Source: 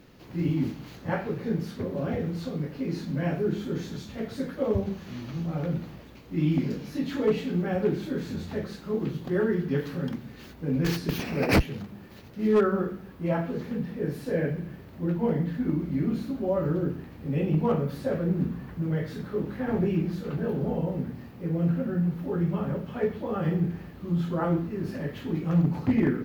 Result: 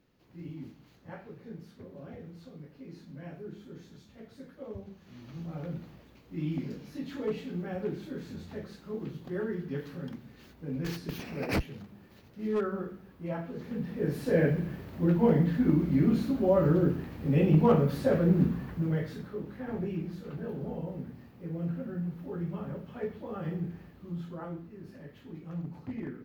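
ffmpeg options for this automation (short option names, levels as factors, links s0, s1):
-af "volume=1.33,afade=t=in:st=4.99:d=0.43:silence=0.421697,afade=t=in:st=13.54:d=0.87:silence=0.281838,afade=t=out:st=18.41:d=0.97:silence=0.281838,afade=t=out:st=23.83:d=0.73:silence=0.473151"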